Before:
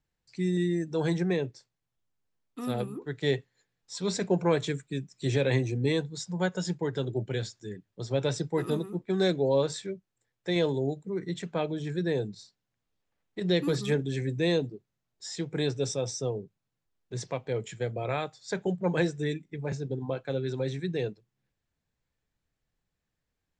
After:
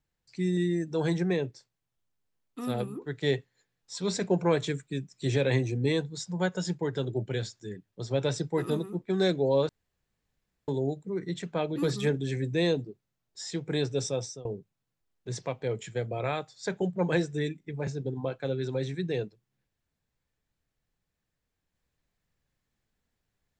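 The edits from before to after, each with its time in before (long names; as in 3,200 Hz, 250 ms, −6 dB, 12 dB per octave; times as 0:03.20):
0:09.69–0:10.68: fill with room tone
0:11.76–0:13.61: remove
0:16.02–0:16.30: fade out, to −22 dB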